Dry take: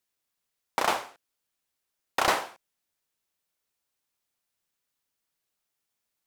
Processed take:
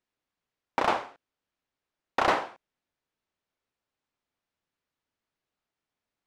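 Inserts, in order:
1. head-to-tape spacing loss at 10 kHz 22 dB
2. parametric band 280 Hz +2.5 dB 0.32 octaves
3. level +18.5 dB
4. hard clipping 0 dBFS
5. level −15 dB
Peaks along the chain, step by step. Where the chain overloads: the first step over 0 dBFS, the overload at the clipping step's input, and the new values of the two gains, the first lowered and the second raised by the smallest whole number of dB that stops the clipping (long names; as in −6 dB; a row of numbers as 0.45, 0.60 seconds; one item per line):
−12.0, −12.0, +6.5, 0.0, −15.0 dBFS
step 3, 6.5 dB
step 3 +11.5 dB, step 5 −8 dB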